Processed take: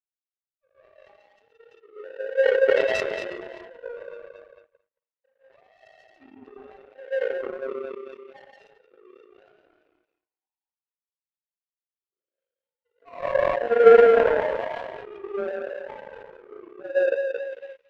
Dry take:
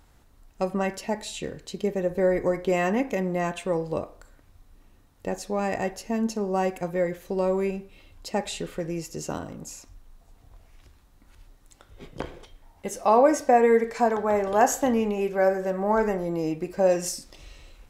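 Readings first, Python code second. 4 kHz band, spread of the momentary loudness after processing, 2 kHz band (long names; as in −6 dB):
can't be measured, 23 LU, +2.5 dB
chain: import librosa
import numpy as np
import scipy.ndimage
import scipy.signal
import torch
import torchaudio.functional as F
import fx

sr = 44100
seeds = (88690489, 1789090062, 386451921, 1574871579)

y = fx.sine_speech(x, sr)
y = fx.echo_thinned(y, sr, ms=223, feedback_pct=28, hz=250.0, wet_db=-4)
y = fx.hpss(y, sr, part='percussive', gain_db=-16)
y = fx.rev_gated(y, sr, seeds[0], gate_ms=190, shape='rising', drr_db=-7.5)
y = fx.power_curve(y, sr, exponent=2.0)
y = fx.sustainer(y, sr, db_per_s=27.0)
y = F.gain(torch.from_numpy(y), -5.5).numpy()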